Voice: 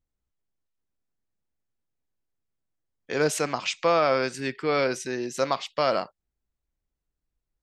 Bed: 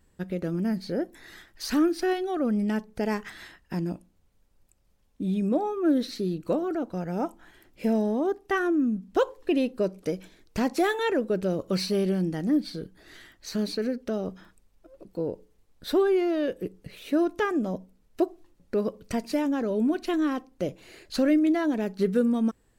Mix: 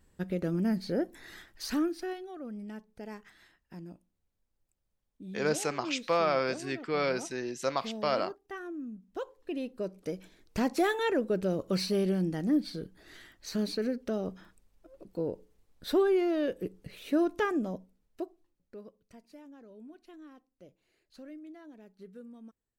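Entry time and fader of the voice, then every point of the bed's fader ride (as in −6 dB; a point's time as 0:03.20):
2.25 s, −5.5 dB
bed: 0:01.48 −1.5 dB
0:02.37 −15.5 dB
0:09.06 −15.5 dB
0:10.54 −3 dB
0:17.51 −3 dB
0:19.11 −25 dB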